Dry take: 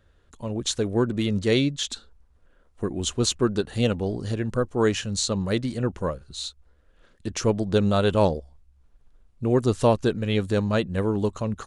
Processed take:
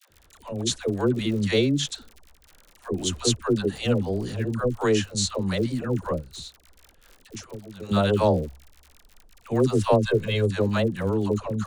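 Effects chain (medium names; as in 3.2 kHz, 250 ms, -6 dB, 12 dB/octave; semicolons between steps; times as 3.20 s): 6.11–7.82 s: compression 6:1, threshold -37 dBFS, peak gain reduction 19.5 dB; 9.97–10.41 s: comb 1.9 ms; crackle 65 per s -34 dBFS; phase dispersion lows, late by 104 ms, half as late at 570 Hz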